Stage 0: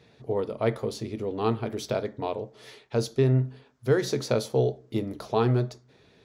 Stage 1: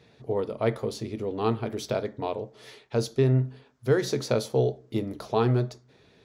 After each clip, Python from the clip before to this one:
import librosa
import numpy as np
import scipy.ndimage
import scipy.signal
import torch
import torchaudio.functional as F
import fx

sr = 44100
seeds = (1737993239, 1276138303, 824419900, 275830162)

y = x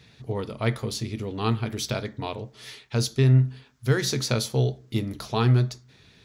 y = fx.peak_eq(x, sr, hz=520.0, db=-13.5, octaves=2.3)
y = F.gain(torch.from_numpy(y), 8.5).numpy()